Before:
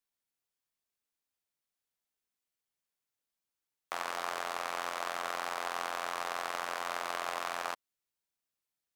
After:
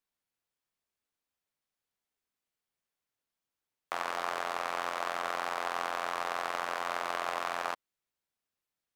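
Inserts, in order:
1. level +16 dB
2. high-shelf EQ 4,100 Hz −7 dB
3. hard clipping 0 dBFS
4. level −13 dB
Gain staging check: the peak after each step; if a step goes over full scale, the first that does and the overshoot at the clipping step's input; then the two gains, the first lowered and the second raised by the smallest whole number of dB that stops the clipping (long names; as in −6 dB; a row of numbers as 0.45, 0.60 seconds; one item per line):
−1.0, −3.0, −3.0, −16.0 dBFS
no step passes full scale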